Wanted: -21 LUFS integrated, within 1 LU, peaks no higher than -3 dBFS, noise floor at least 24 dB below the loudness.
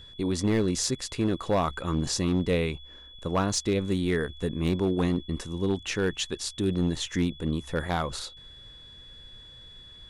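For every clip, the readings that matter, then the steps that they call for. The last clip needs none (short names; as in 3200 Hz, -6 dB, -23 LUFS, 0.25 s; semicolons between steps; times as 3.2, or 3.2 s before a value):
clipped 0.9%; flat tops at -18.0 dBFS; steady tone 3400 Hz; tone level -47 dBFS; loudness -28.0 LUFS; peak -18.0 dBFS; loudness target -21.0 LUFS
-> clip repair -18 dBFS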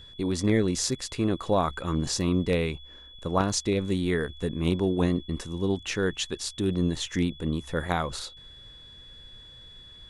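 clipped 0.0%; steady tone 3400 Hz; tone level -47 dBFS
-> notch 3400 Hz, Q 30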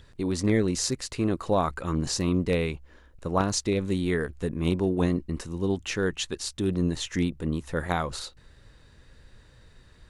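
steady tone none; loudness -28.0 LUFS; peak -9.0 dBFS; loudness target -21.0 LUFS
-> gain +7 dB; limiter -3 dBFS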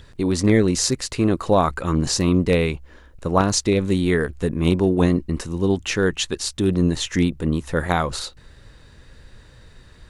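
loudness -21.0 LUFS; peak -3.0 dBFS; noise floor -48 dBFS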